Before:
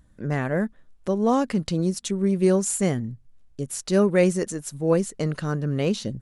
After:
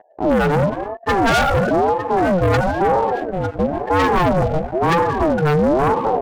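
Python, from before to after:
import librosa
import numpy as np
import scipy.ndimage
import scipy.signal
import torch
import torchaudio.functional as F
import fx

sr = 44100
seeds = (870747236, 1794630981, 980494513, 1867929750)

p1 = fx.lowpass_res(x, sr, hz=1100.0, q=12.0)
p2 = fx.clip_hard(p1, sr, threshold_db=-24.0, at=(1.8, 2.41))
p3 = fx.low_shelf(p2, sr, hz=250.0, db=11.5)
p4 = p3 + fx.echo_feedback(p3, sr, ms=904, feedback_pct=34, wet_db=-17.0, dry=0)
p5 = fx.rev_gated(p4, sr, seeds[0], gate_ms=350, shape='falling', drr_db=7.0)
p6 = fx.spec_topn(p5, sr, count=16)
p7 = fx.leveller(p6, sr, passes=3)
p8 = 10.0 ** (-10.5 / 20.0) * np.tanh(p7 / 10.0 ** (-10.5 / 20.0))
y = fx.ring_lfo(p8, sr, carrier_hz=490.0, swing_pct=40, hz=1.0)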